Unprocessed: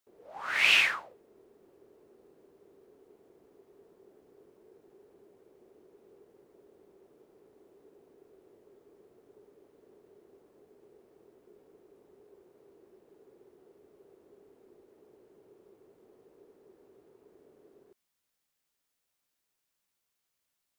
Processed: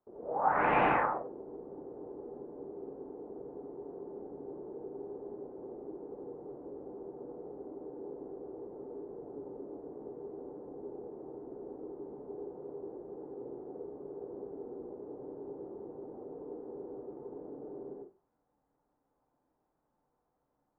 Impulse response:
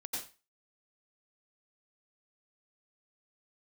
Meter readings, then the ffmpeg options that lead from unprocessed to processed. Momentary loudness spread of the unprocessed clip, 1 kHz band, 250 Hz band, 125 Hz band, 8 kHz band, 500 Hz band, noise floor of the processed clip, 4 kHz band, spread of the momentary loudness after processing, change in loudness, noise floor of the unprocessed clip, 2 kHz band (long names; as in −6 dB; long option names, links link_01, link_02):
19 LU, +12.0 dB, +16.5 dB, +15.5 dB, below −30 dB, +15.0 dB, −80 dBFS, below −20 dB, 12 LU, −15.0 dB, −83 dBFS, can't be measured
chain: -filter_complex "[0:a]lowpass=frequency=1000:width=0.5412,lowpass=frequency=1000:width=1.3066[link_01];[1:a]atrim=start_sample=2205[link_02];[link_01][link_02]afir=irnorm=-1:irlink=0,volume=15.5dB"